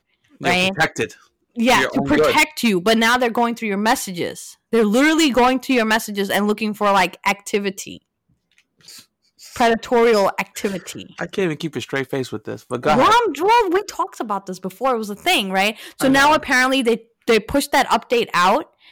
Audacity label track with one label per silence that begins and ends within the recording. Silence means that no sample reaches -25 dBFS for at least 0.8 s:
7.930000	9.560000	silence